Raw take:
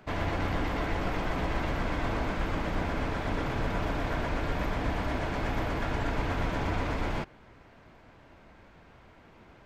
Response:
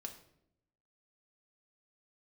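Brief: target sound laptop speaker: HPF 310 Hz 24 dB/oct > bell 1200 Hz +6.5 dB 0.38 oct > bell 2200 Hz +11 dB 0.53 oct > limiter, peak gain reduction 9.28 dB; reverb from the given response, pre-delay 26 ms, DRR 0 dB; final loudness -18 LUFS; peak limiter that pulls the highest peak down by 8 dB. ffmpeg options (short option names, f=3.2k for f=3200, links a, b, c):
-filter_complex "[0:a]alimiter=level_in=1.5dB:limit=-24dB:level=0:latency=1,volume=-1.5dB,asplit=2[a][b];[1:a]atrim=start_sample=2205,adelay=26[c];[b][c]afir=irnorm=-1:irlink=0,volume=3.5dB[d];[a][d]amix=inputs=2:normalize=0,highpass=f=310:w=0.5412,highpass=f=310:w=1.3066,equalizer=f=1.2k:t=o:w=0.38:g=6.5,equalizer=f=2.2k:t=o:w=0.53:g=11,volume=17dB,alimiter=limit=-10.5dB:level=0:latency=1"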